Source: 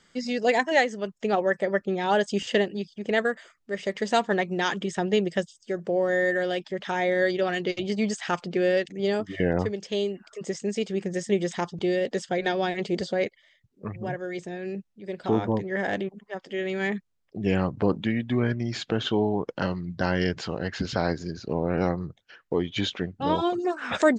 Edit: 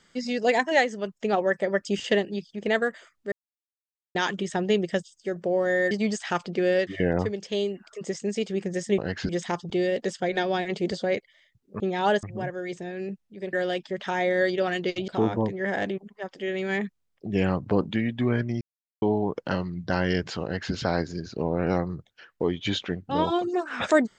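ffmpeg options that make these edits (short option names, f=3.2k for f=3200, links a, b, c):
-filter_complex "[0:a]asplit=14[a][b][c][d][e][f][g][h][i][j][k][l][m][n];[a]atrim=end=1.852[o];[b]atrim=start=2.278:end=3.75,asetpts=PTS-STARTPTS,afade=t=out:st=1.468:d=0.004:c=hsin[p];[c]atrim=start=3.75:end=4.58,asetpts=PTS-STARTPTS,volume=0[q];[d]atrim=start=4.58:end=6.342,asetpts=PTS-STARTPTS,afade=t=in:d=0.004:c=hsin[r];[e]atrim=start=7.888:end=8.852[s];[f]atrim=start=9.268:end=11.382[t];[g]atrim=start=20.538:end=20.852[u];[h]atrim=start=11.378:end=13.892[v];[i]atrim=start=1.848:end=2.282[w];[j]atrim=start=13.888:end=15.192[x];[k]atrim=start=6.338:end=7.892[y];[l]atrim=start=15.188:end=18.72,asetpts=PTS-STARTPTS,afade=t=out:st=3.528:d=0.004:c=hsin[z];[m]atrim=start=18.72:end=19.13,asetpts=PTS-STARTPTS,volume=0[aa];[n]atrim=start=19.13,asetpts=PTS-STARTPTS,afade=t=in:d=0.004:c=hsin[ab];[p][q][r]concat=n=3:v=0:a=1[ac];[o][ac]acrossfade=d=0.004:c1=hsin:c2=hsin[ad];[ad][s]acrossfade=d=0.004:c1=hsin:c2=hsin[ae];[ae][t]acrossfade=d=0.004:c1=hsin:c2=hsin[af];[af][u]acrossfade=d=0.004:c1=hsin:c2=hsin[ag];[ag][v]acrossfade=d=0.004:c1=hsin:c2=hsin[ah];[ah][w]acrossfade=d=0.004:c1=hsin:c2=hsin[ai];[ai][x]acrossfade=d=0.004:c1=hsin:c2=hsin[aj];[aj][y]acrossfade=d=0.004:c1=hsin:c2=hsin[ak];[z][aa][ab]concat=n=3:v=0:a=1[al];[ak][al]acrossfade=d=0.004:c1=hsin:c2=hsin"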